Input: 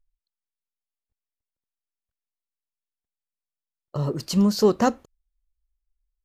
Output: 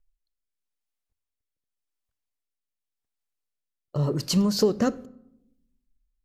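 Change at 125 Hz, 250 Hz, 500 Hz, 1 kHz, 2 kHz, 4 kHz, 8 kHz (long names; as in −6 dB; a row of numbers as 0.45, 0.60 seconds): 0.0, −2.5, −3.0, −8.5, −4.0, +1.5, +1.0 decibels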